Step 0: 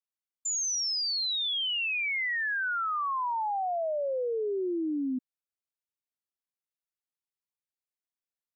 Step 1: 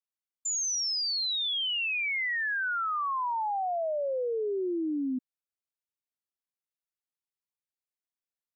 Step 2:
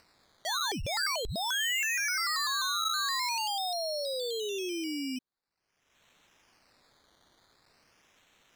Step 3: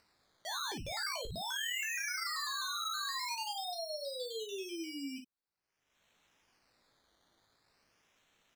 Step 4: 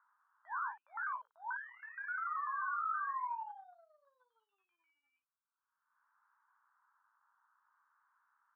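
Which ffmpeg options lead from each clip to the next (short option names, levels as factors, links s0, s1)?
-af anull
-af "acrusher=samples=13:mix=1:aa=0.000001:lfo=1:lforange=7.8:lforate=0.45,equalizer=f=4400:t=o:w=1.6:g=12,acompressor=mode=upward:threshold=0.0178:ratio=2.5,volume=0.562"
-af "aecho=1:1:18|57:0.473|0.376,volume=0.376"
-filter_complex "[0:a]aeval=exprs='0.0531*(cos(1*acos(clip(val(0)/0.0531,-1,1)))-cos(1*PI/2))+0.00188*(cos(2*acos(clip(val(0)/0.0531,-1,1)))-cos(2*PI/2))+0.00841*(cos(3*acos(clip(val(0)/0.0531,-1,1)))-cos(3*PI/2))+0.00668*(cos(5*acos(clip(val(0)/0.0531,-1,1)))-cos(5*PI/2))+0.00211*(cos(7*acos(clip(val(0)/0.0531,-1,1)))-cos(7*PI/2))':c=same,asplit=2[s0][s1];[s1]asoftclip=type=tanh:threshold=0.0282,volume=0.398[s2];[s0][s2]amix=inputs=2:normalize=0,asuperpass=centerf=1200:order=8:qfactor=1.8,volume=1.41"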